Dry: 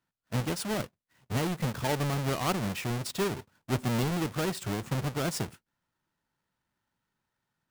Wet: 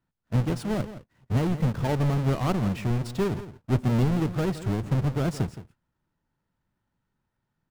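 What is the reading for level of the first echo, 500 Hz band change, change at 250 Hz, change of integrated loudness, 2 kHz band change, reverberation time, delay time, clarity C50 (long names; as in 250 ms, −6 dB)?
−13.5 dB, +3.0 dB, +5.5 dB, +4.5 dB, −2.0 dB, no reverb audible, 168 ms, no reverb audible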